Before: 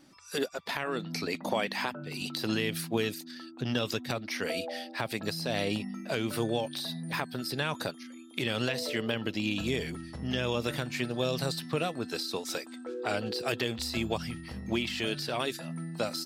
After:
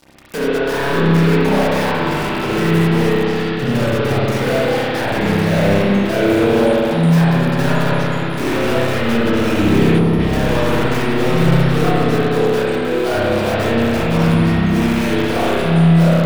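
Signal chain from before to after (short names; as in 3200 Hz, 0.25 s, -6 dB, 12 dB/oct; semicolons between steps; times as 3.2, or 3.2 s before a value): switching dead time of 0.18 ms; sample leveller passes 5; spring tank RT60 3.4 s, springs 30/60 ms, chirp 65 ms, DRR -10 dB; in parallel at 0 dB: limiter -26 dBFS, peak gain reduction 27.5 dB; on the sum: spectral gain 9.99–10.2, 1500–9400 Hz -6 dB; gain -4.5 dB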